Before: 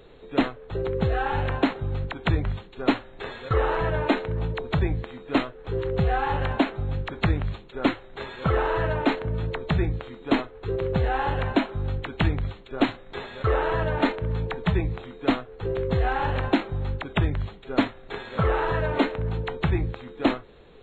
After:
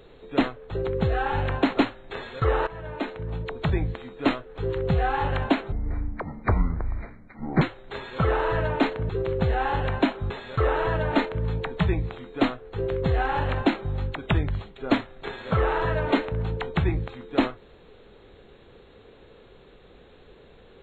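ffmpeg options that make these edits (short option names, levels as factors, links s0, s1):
-filter_complex "[0:a]asplit=7[s0][s1][s2][s3][s4][s5][s6];[s0]atrim=end=1.772[s7];[s1]atrim=start=2.858:end=3.76,asetpts=PTS-STARTPTS,afade=t=out:st=0.898:d=0.004:c=hsin:silence=0.149624[s8];[s2]atrim=start=3.76:end=6.814,asetpts=PTS-STARTPTS,afade=t=in:d=1.16:silence=0.149624[s9];[s3]atrim=start=6.81:end=7.87,asetpts=PTS-STARTPTS,asetrate=24696,aresample=44100[s10];[s4]atrim=start=7.866:end=9.352[s11];[s5]atrim=start=10.628:end=11.842[s12];[s6]atrim=start=13.168[s13];[s8][s9]concat=n=2:v=0:a=1[s14];[s7][s14]acrossfade=d=0.004:c1=hsin:c2=hsin[s15];[s15][s10]acrossfade=d=0.004:c1=hsin:c2=hsin[s16];[s16][s11]acrossfade=d=0.004:c1=hsin:c2=hsin[s17];[s17][s12]acrossfade=d=0.004:c1=hsin:c2=hsin[s18];[s18][s13]acrossfade=d=0.004:c1=hsin:c2=hsin"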